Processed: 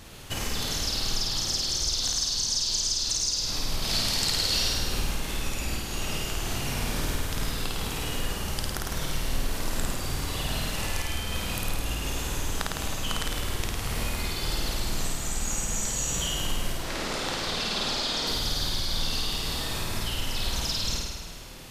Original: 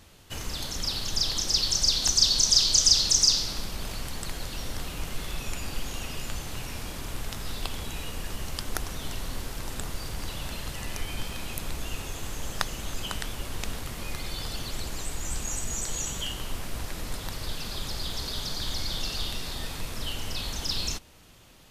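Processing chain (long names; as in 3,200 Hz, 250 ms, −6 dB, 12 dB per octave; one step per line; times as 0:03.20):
0:16.77–0:18.27: three-way crossover with the lows and the highs turned down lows −16 dB, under 180 Hz, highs −17 dB, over 7,500 Hz
downward compressor 12 to 1, threshold −34 dBFS, peak gain reduction 20 dB
0:03.82–0:04.73: parametric band 4,600 Hz +12.5 dB 1.2 octaves
flutter between parallel walls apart 9 metres, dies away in 1.4 s
level +6.5 dB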